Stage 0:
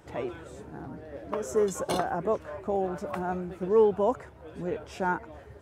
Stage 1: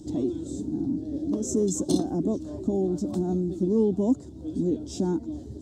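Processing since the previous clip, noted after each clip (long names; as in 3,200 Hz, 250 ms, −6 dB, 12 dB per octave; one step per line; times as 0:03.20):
drawn EQ curve 150 Hz 0 dB, 300 Hz +13 dB, 460 Hz −11 dB, 700 Hz −13 dB, 1,400 Hz −27 dB, 2,400 Hz −27 dB, 3,700 Hz −2 dB, 7,500 Hz +4 dB, 11,000 Hz −9 dB
in parallel at +2.5 dB: downward compressor, threshold −37 dBFS, peak gain reduction 15.5 dB
on the sum: level +1.5 dB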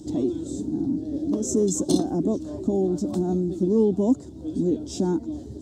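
low-shelf EQ 150 Hz −4 dB
level +3.5 dB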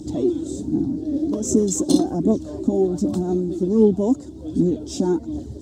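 phase shifter 1.3 Hz, delay 3.9 ms, feedback 41%
level +2.5 dB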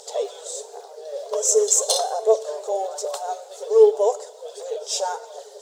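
linear-phase brick-wall high-pass 420 Hz
backwards echo 75 ms −22.5 dB
convolution reverb RT60 1.0 s, pre-delay 6 ms, DRR 13 dB
level +8 dB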